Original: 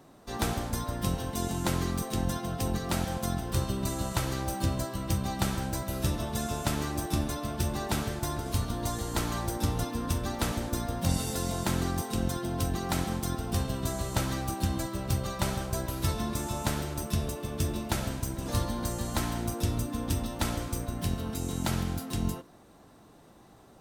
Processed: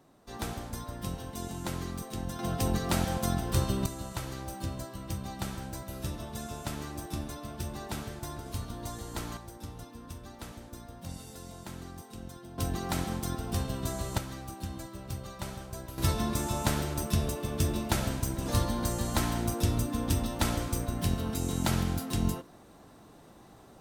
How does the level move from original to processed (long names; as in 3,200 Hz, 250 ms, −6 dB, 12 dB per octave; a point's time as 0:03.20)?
−6.5 dB
from 0:02.39 +1.5 dB
from 0:03.86 −7 dB
from 0:09.37 −14 dB
from 0:12.58 −2 dB
from 0:14.18 −9 dB
from 0:15.98 +1.5 dB